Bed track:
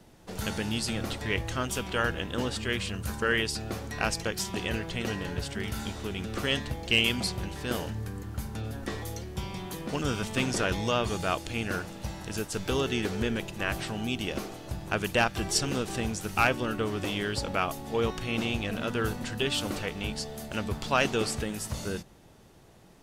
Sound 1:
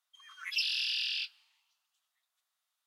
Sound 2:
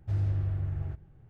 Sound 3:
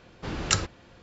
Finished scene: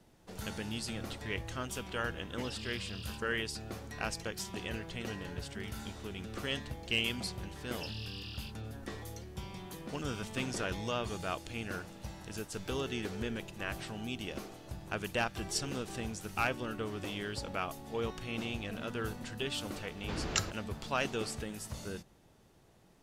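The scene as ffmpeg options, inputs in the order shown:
ffmpeg -i bed.wav -i cue0.wav -i cue1.wav -i cue2.wav -filter_complex "[1:a]asplit=2[link_01][link_02];[0:a]volume=-8dB[link_03];[link_01]acompressor=threshold=-36dB:ratio=6:attack=3.2:release=140:knee=1:detection=peak[link_04];[3:a]acompressor=threshold=-30dB:ratio=2:attack=52:release=843:knee=1:detection=peak[link_05];[link_04]atrim=end=2.86,asetpts=PTS-STARTPTS,volume=-9.5dB,afade=type=in:duration=0.004:curve=hsin,afade=type=out:start_time=2.856:duration=0.004:curve=hsin,adelay=1920[link_06];[link_02]atrim=end=2.86,asetpts=PTS-STARTPTS,volume=-14dB,afade=type=in:duration=0.004:curve=hsin,afade=type=out:start_time=2.856:duration=0.004:curve=hsin,adelay=7250[link_07];[link_05]atrim=end=1.02,asetpts=PTS-STARTPTS,volume=-4.5dB,afade=type=in:duration=0.004:curve=hsin,afade=type=out:start_time=1.016:duration=0.004:curve=hsin,adelay=19850[link_08];[link_03][link_06][link_07][link_08]amix=inputs=4:normalize=0" out.wav

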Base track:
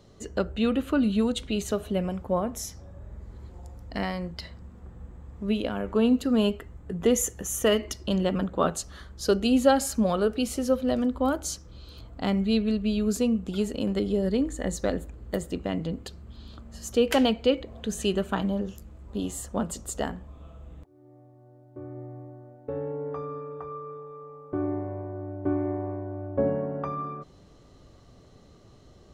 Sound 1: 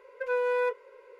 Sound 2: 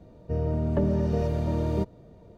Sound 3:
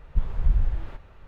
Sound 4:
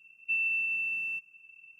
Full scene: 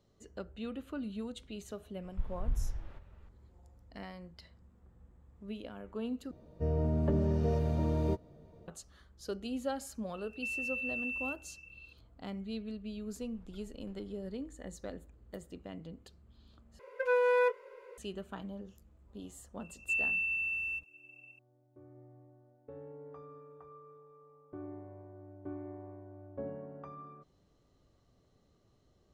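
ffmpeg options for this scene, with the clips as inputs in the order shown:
ffmpeg -i bed.wav -i cue0.wav -i cue1.wav -i cue2.wav -i cue3.wav -filter_complex "[3:a]asplit=2[link_01][link_02];[4:a]asplit=2[link_03][link_04];[0:a]volume=-16dB[link_05];[2:a]asplit=2[link_06][link_07];[link_07]adelay=13,volume=-7dB[link_08];[link_06][link_08]amix=inputs=2:normalize=0[link_09];[link_03]acompressor=threshold=-36dB:ratio=6:attack=3.2:release=140:knee=1:detection=peak[link_10];[link_02]acompressor=threshold=-35dB:ratio=6:attack=3.2:release=140:knee=1:detection=peak[link_11];[link_05]asplit=3[link_12][link_13][link_14];[link_12]atrim=end=6.314[link_15];[link_09]atrim=end=2.37,asetpts=PTS-STARTPTS,volume=-6.5dB[link_16];[link_13]atrim=start=8.676:end=16.794[link_17];[1:a]atrim=end=1.19[link_18];[link_14]atrim=start=17.976[link_19];[link_01]atrim=end=1.27,asetpts=PTS-STARTPTS,volume=-12dB,afade=type=in:duration=0.004:curve=hsin,afade=type=out:start_time=1.266:duration=0.004:curve=hsin,adelay=2020[link_20];[link_10]atrim=end=1.79,asetpts=PTS-STARTPTS,volume=-0.5dB,afade=type=in:duration=0.004:curve=hsin,afade=type=out:start_time=1.786:duration=0.004:curve=hsin,adelay=10140[link_21];[link_11]atrim=end=1.27,asetpts=PTS-STARTPTS,volume=-17.5dB,afade=type=in:duration=0.004:curve=hsin,afade=type=out:start_time=1.266:duration=0.004:curve=hsin,adelay=13070[link_22];[link_04]atrim=end=1.79,asetpts=PTS-STARTPTS,volume=-2.5dB,afade=type=in:duration=0.004:curve=hsin,afade=type=out:start_time=1.786:duration=0.004:curve=hsin,adelay=19600[link_23];[link_15][link_16]acrossfade=duration=0.004:curve1=hsin:curve2=hsin[link_24];[link_24][link_17]acrossfade=duration=0.004:curve1=hsin:curve2=hsin[link_25];[link_25][link_18]acrossfade=duration=0.004:curve1=hsin:curve2=hsin[link_26];[link_26][link_19]acrossfade=duration=0.004:curve1=hsin:curve2=hsin[link_27];[link_27][link_20][link_21][link_22][link_23]amix=inputs=5:normalize=0" out.wav

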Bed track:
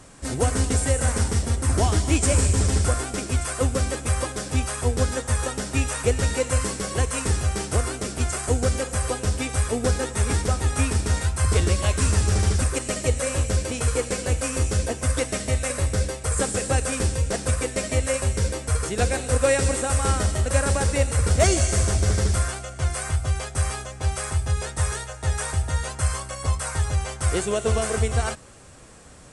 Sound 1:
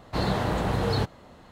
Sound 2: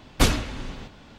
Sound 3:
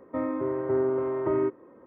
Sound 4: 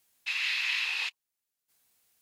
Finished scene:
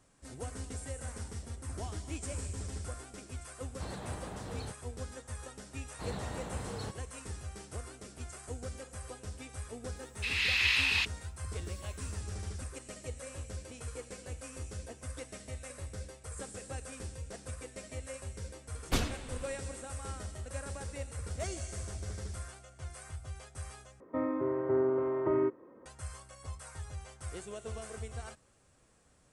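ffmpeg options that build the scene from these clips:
ffmpeg -i bed.wav -i cue0.wav -i cue1.wav -i cue2.wav -i cue3.wav -filter_complex "[1:a]asplit=2[link_01][link_02];[0:a]volume=-19.5dB[link_03];[link_01]alimiter=limit=-18.5dB:level=0:latency=1:release=104[link_04];[4:a]dynaudnorm=framelen=320:gausssize=3:maxgain=7dB[link_05];[link_03]asplit=2[link_06][link_07];[link_06]atrim=end=24.004[link_08];[3:a]atrim=end=1.86,asetpts=PTS-STARTPTS,volume=-3.5dB[link_09];[link_07]atrim=start=25.856[link_10];[link_04]atrim=end=1.51,asetpts=PTS-STARTPTS,volume=-15dB,afade=type=in:duration=0.004:curve=hsin,afade=type=out:start_time=1.506:duration=0.004:curve=hsin,adelay=3670[link_11];[link_02]atrim=end=1.51,asetpts=PTS-STARTPTS,volume=-15dB,afade=type=in:duration=0.004:curve=hsin,afade=type=out:start_time=1.506:duration=0.004:curve=hsin,adelay=5860[link_12];[link_05]atrim=end=2.21,asetpts=PTS-STARTPTS,volume=-4.5dB,afade=type=in:duration=0.004:curve=hsin,afade=type=out:start_time=2.206:duration=0.004:curve=hsin,adelay=9960[link_13];[2:a]atrim=end=1.18,asetpts=PTS-STARTPTS,volume=-11.5dB,afade=type=in:duration=0.004:curve=hsin,afade=type=out:start_time=1.176:duration=0.004:curve=hsin,adelay=18720[link_14];[link_08][link_09]acrossfade=duration=0.004:curve1=hsin:curve2=hsin[link_15];[link_15][link_10]acrossfade=duration=0.004:curve1=hsin:curve2=hsin[link_16];[link_16][link_11][link_12][link_13][link_14]amix=inputs=5:normalize=0" out.wav

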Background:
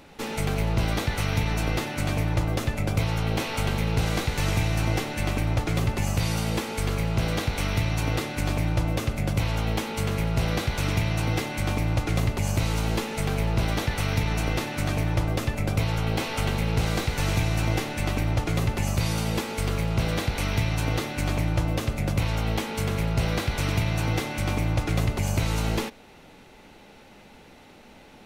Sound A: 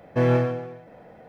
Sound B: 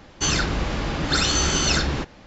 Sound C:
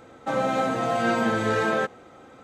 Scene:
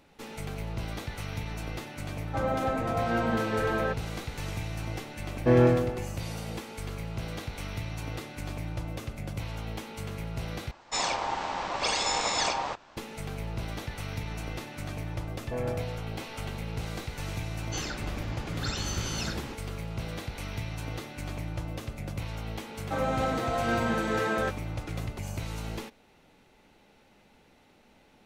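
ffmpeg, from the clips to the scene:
ffmpeg -i bed.wav -i cue0.wav -i cue1.wav -i cue2.wav -filter_complex "[3:a]asplit=2[link_01][link_02];[1:a]asplit=2[link_03][link_04];[2:a]asplit=2[link_05][link_06];[0:a]volume=-10.5dB[link_07];[link_01]aemphasis=mode=reproduction:type=75kf[link_08];[link_03]equalizer=frequency=330:width=2.5:gain=7.5[link_09];[link_05]aeval=exprs='val(0)*sin(2*PI*860*n/s)':channel_layout=same[link_10];[link_04]equalizer=frequency=660:width=1.5:gain=8[link_11];[link_07]asplit=2[link_12][link_13];[link_12]atrim=end=10.714[link_14];[link_10]atrim=end=2.26,asetpts=PTS-STARTPTS,volume=-4.5dB[link_15];[link_13]atrim=start=12.966[link_16];[link_08]atrim=end=2.43,asetpts=PTS-STARTPTS,volume=-4.5dB,afade=type=in:duration=0.004:curve=hsin,afade=type=out:start_time=2.426:duration=0.004:curve=hsin,adelay=2070[link_17];[link_09]atrim=end=1.28,asetpts=PTS-STARTPTS,volume=-2dB,afade=type=in:duration=0.004:curve=hsin,afade=type=out:start_time=1.276:duration=0.004:curve=hsin,adelay=5300[link_18];[link_11]atrim=end=1.28,asetpts=PTS-STARTPTS,volume=-16dB,afade=type=in:duration=0.004:curve=hsin,afade=type=out:start_time=1.276:duration=0.004:curve=hsin,adelay=15350[link_19];[link_06]atrim=end=2.26,asetpts=PTS-STARTPTS,volume=-14dB,afade=type=in:duration=0.004:curve=hsin,afade=type=out:start_time=2.256:duration=0.004:curve=hsin,adelay=17510[link_20];[link_02]atrim=end=2.43,asetpts=PTS-STARTPTS,volume=-5dB,afade=type=in:duration=0.004:curve=hsin,afade=type=out:start_time=2.426:duration=0.004:curve=hsin,adelay=22640[link_21];[link_14][link_15]acrossfade=duration=0.004:curve1=hsin:curve2=hsin[link_22];[link_22][link_16]acrossfade=duration=0.004:curve1=hsin:curve2=hsin[link_23];[link_23][link_17][link_18][link_19][link_20][link_21]amix=inputs=6:normalize=0" out.wav

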